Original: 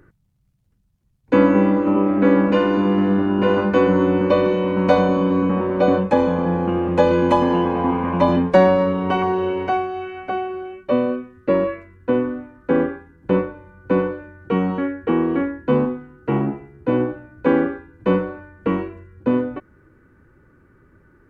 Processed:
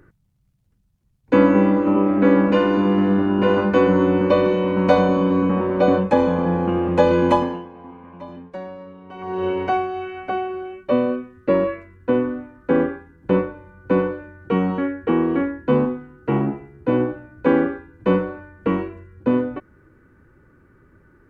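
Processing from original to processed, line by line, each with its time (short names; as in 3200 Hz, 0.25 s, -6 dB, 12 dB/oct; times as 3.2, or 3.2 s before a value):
7.34–9.46 dip -20.5 dB, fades 0.38 s quadratic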